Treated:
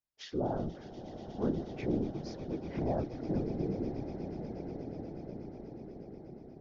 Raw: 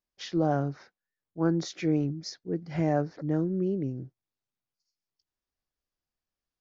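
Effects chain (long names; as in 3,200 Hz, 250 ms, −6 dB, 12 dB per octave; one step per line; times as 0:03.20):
treble cut that deepens with the level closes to 1,000 Hz, closed at −25.5 dBFS
echo that builds up and dies away 121 ms, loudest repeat 8, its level −16.5 dB
random phases in short frames
level −7 dB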